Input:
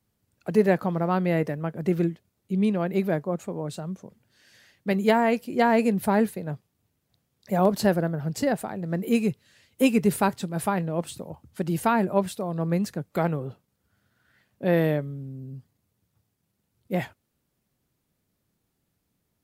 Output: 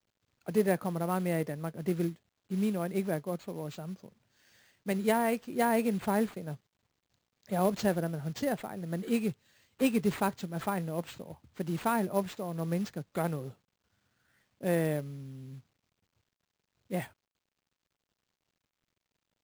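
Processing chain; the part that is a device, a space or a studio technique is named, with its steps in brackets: early companding sampler (sample-rate reducer 11000 Hz, jitter 0%; companded quantiser 6-bit); gain -7 dB

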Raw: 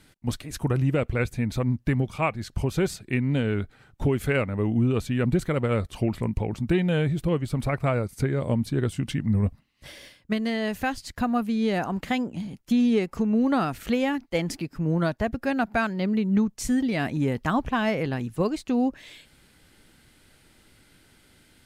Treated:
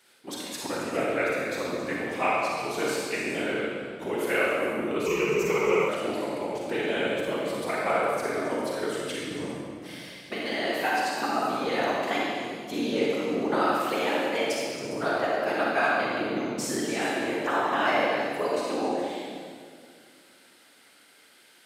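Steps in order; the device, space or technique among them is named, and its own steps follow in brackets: whispering ghost (whisperiser; HPF 520 Hz 12 dB/oct; reverb RT60 2.1 s, pre-delay 34 ms, DRR -4.5 dB); 5.06–5.89 ripple EQ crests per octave 0.77, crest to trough 17 dB; delay with a stepping band-pass 0.136 s, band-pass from 4000 Hz, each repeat 0.7 oct, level -6 dB; gain -2 dB

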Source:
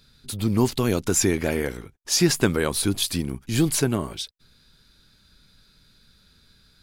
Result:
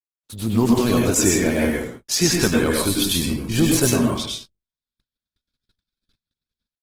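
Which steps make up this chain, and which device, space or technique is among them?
speakerphone in a meeting room (reverb RT60 0.45 s, pre-delay 92 ms, DRR -1.5 dB; AGC gain up to 15 dB; gate -32 dBFS, range -53 dB; gain -3.5 dB; Opus 16 kbps 48000 Hz)

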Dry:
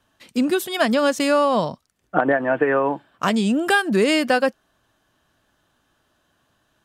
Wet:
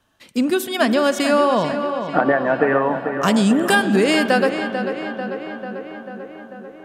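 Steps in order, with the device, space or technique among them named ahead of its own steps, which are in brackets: 2.9–3.75 tone controls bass +5 dB, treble +5 dB; dub delay into a spring reverb (darkening echo 0.443 s, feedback 69%, low-pass 3500 Hz, level -8.5 dB; spring tank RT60 3.8 s, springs 37 ms, chirp 75 ms, DRR 12.5 dB); gain +1 dB

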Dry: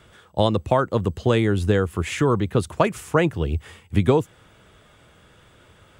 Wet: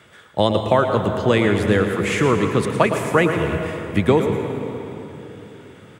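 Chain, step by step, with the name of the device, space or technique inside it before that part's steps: PA in a hall (HPF 120 Hz 12 dB/oct; bell 2000 Hz +5.5 dB 0.62 oct; echo 0.112 s -10 dB; reverb RT60 3.5 s, pre-delay 0.108 s, DRR 6 dB); gain +2 dB

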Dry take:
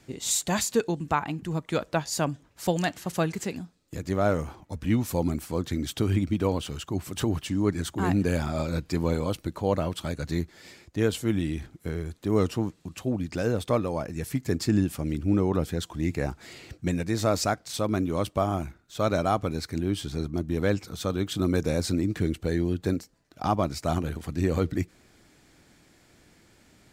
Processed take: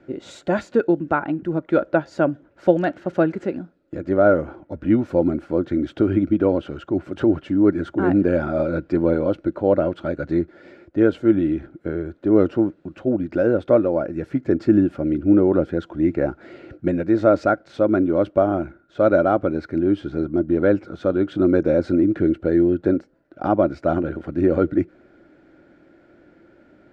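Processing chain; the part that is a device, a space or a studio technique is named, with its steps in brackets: inside a cardboard box (LPF 2500 Hz 12 dB/oct; small resonant body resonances 340/550/1400 Hz, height 16 dB, ringing for 25 ms); gain -3 dB

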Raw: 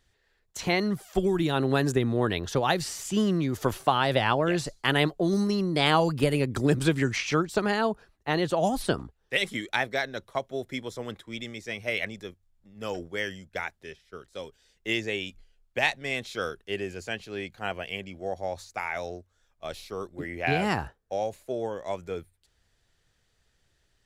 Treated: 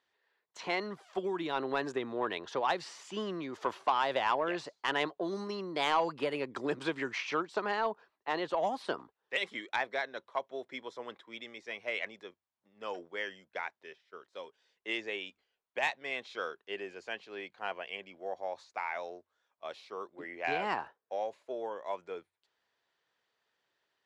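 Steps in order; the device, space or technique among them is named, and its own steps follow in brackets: intercom (BPF 380–4000 Hz; bell 1000 Hz +7 dB 0.4 oct; soft clip -13 dBFS, distortion -18 dB); gain -5.5 dB

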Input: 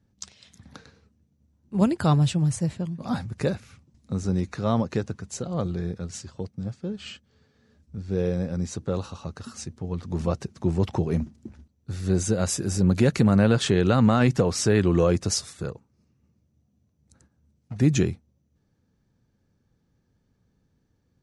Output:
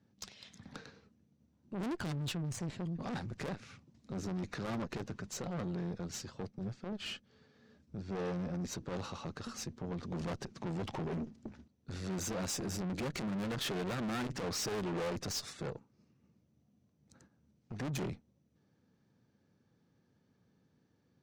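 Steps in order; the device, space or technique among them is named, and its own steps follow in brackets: valve radio (BPF 140–5800 Hz; tube stage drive 35 dB, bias 0.45; core saturation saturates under 180 Hz); gain +1.5 dB

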